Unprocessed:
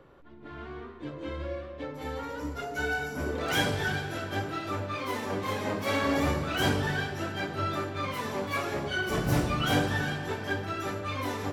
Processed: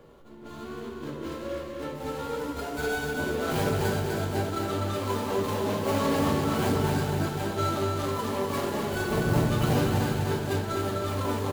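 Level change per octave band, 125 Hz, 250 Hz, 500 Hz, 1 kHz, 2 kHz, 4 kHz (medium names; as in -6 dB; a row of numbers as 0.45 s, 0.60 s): +4.5 dB, +4.0 dB, +4.5 dB, +2.0 dB, -3.5 dB, -2.0 dB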